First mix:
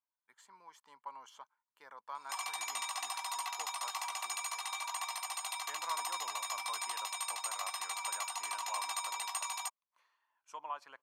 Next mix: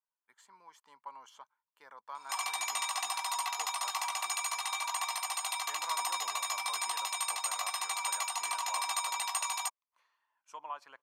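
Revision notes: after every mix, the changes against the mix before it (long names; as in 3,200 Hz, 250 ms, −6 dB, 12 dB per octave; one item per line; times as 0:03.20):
background +4.5 dB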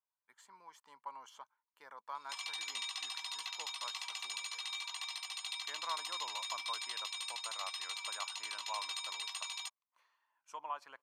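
background: add resonant band-pass 3,600 Hz, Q 1.9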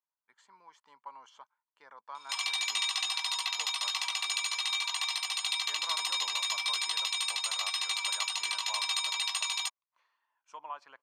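speech: add low-pass filter 5,900 Hz 12 dB per octave
background +10.0 dB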